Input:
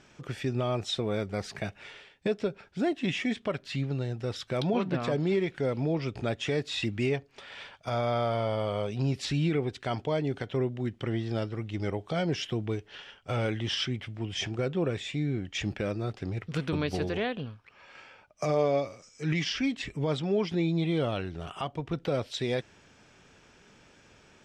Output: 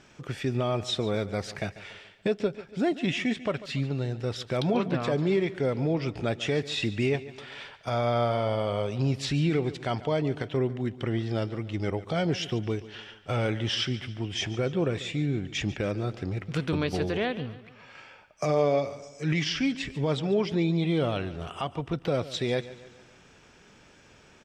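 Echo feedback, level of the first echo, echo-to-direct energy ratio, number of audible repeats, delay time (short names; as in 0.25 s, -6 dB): 48%, -16.5 dB, -15.5 dB, 3, 0.143 s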